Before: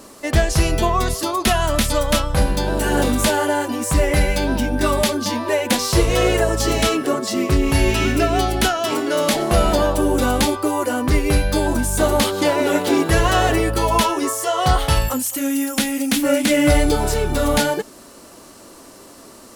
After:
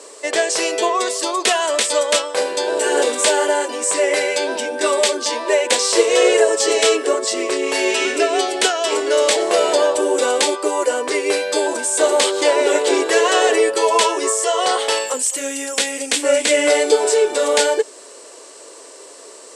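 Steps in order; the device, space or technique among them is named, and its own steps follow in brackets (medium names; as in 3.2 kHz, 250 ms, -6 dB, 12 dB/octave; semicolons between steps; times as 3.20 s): phone speaker on a table (cabinet simulation 420–8600 Hz, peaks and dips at 440 Hz +8 dB, 770 Hz -5 dB, 1.3 kHz -6 dB, 8.1 kHz +9 dB); trim +3.5 dB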